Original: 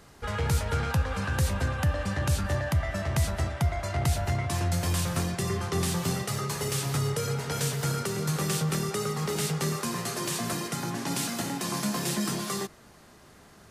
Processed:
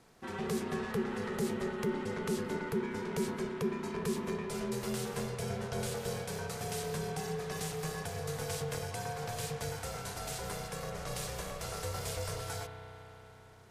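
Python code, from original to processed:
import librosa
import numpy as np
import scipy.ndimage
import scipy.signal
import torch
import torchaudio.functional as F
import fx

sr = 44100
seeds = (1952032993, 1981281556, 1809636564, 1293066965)

y = x * np.sin(2.0 * np.pi * 300.0 * np.arange(len(x)) / sr)
y = fx.rev_spring(y, sr, rt60_s=3.9, pass_ms=(32,), chirp_ms=55, drr_db=6.0)
y = F.gain(torch.from_numpy(y), -6.5).numpy()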